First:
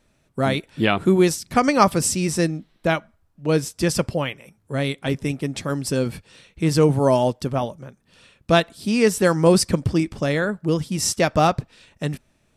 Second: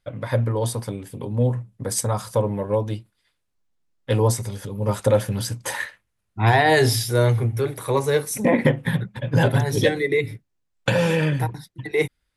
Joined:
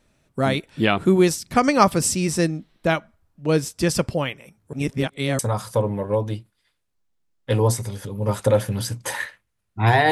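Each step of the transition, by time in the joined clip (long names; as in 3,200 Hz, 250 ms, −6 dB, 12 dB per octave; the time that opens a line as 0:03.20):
first
0:04.73–0:05.39: reverse
0:05.39: continue with second from 0:01.99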